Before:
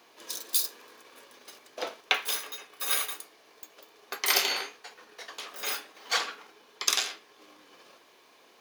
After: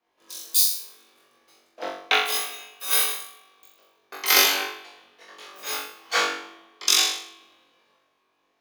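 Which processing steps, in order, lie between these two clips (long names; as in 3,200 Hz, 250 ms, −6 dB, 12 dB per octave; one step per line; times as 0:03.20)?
flutter between parallel walls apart 3.6 metres, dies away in 0.68 s
spring reverb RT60 3.4 s, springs 39 ms, chirp 80 ms, DRR 11.5 dB
multiband upward and downward expander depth 70%
level −1 dB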